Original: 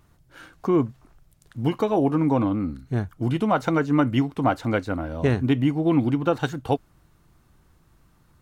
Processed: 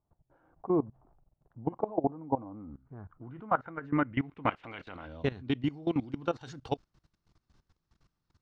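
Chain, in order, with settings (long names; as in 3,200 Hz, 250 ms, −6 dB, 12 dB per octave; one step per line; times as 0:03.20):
0:04.45–0:05.05: ceiling on every frequency bin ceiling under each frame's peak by 17 dB
output level in coarse steps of 19 dB
low-pass filter sweep 790 Hz → 5,200 Hz, 0:02.34–0:05.87
level −7 dB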